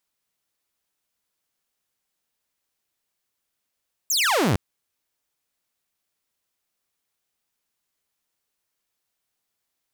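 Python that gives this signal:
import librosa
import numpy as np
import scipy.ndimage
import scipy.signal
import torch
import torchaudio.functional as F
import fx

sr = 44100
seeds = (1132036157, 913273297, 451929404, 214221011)

y = fx.laser_zap(sr, level_db=-15.5, start_hz=7800.0, end_hz=80.0, length_s=0.46, wave='saw')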